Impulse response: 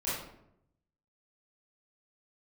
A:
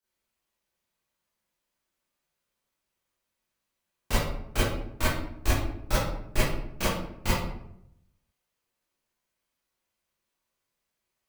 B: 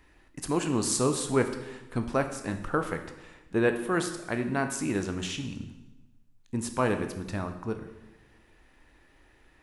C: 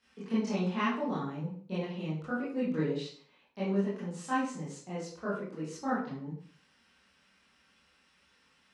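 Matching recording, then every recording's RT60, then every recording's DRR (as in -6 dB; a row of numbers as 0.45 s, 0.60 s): A; 0.75 s, 1.1 s, 0.45 s; -11.5 dB, 6.5 dB, -10.5 dB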